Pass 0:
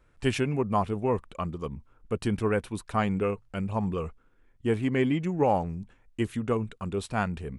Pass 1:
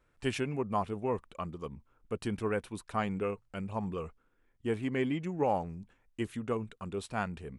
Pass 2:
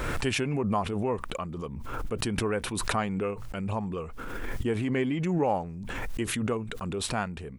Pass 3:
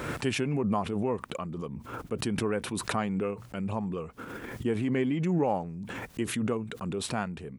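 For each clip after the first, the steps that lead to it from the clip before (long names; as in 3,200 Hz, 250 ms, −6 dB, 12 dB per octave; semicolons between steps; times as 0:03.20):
low-shelf EQ 150 Hz −5.5 dB; level −5 dB
background raised ahead of every attack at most 24 dB per second; level +2.5 dB
high-pass filter 140 Hz 12 dB per octave; low-shelf EQ 300 Hz +7 dB; level −3 dB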